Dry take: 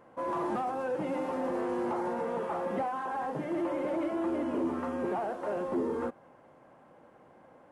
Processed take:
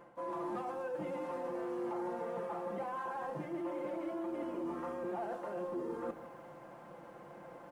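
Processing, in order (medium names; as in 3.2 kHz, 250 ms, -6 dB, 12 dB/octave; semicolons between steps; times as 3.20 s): comb 5.8 ms, depth 58%; de-hum 54.53 Hz, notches 9; reverse; compression 4:1, threshold -44 dBFS, peak gain reduction 16 dB; reverse; bit-crushed delay 155 ms, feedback 35%, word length 11-bit, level -14 dB; trim +4 dB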